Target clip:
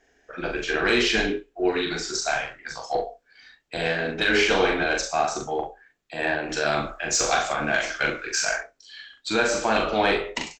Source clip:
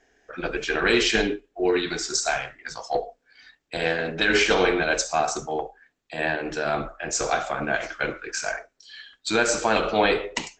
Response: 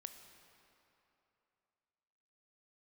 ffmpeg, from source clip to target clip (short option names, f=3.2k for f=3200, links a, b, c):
-filter_complex "[0:a]acrossover=split=6400[a][b];[b]acompressor=threshold=-43dB:ratio=4:attack=1:release=60[c];[a][c]amix=inputs=2:normalize=0,asettb=1/sr,asplit=3[d][e][f];[d]atrim=end=6.494[g];[e]atrim=start=6.49:end=8.57,asetpts=PTS-STARTPTS,afade=t=in:d=0.004:c=qsin,afade=t=out:st=2.076:d=0.004:c=qsin,highshelf=f=2.3k:g=10[h];[f]atrim=start=8.566[i];[g][h]acrossfade=d=0.004:c1=hsin:c2=qsin[j];[j][i]acrossfade=d=0.004:c1=qsin:c2=hsin,acontrast=65,aecho=1:1:41|66:0.631|0.178,volume=-7.5dB"